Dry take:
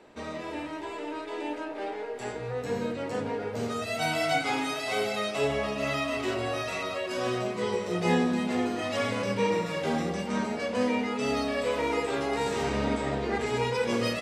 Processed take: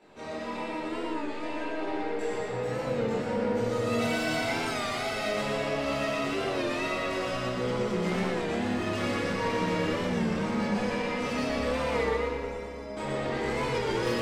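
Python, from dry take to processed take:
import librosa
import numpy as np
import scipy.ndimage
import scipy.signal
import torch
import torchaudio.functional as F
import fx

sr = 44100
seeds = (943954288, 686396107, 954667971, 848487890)

y = fx.chorus_voices(x, sr, voices=2, hz=0.26, base_ms=19, depth_ms=3.4, mix_pct=55)
y = 10.0 ** (-32.5 / 20.0) * np.tanh(y / 10.0 ** (-32.5 / 20.0))
y = fx.stiff_resonator(y, sr, f0_hz=200.0, decay_s=0.45, stiffness=0.008, at=(12.05, 12.97))
y = fx.echo_feedback(y, sr, ms=119, feedback_pct=49, wet_db=-3.5)
y = fx.room_shoebox(y, sr, seeds[0], volume_m3=120.0, walls='hard', distance_m=0.6)
y = fx.record_warp(y, sr, rpm=33.33, depth_cents=100.0)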